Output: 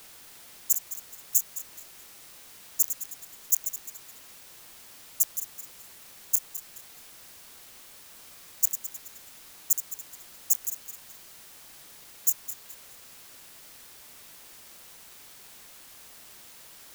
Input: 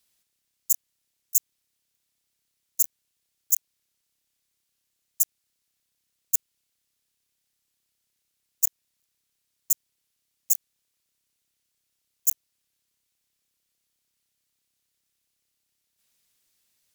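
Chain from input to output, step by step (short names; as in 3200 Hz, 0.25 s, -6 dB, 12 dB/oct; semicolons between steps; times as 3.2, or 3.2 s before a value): regenerating reverse delay 0.106 s, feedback 57%, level -9 dB; requantised 8-bit, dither triangular; gain -1.5 dB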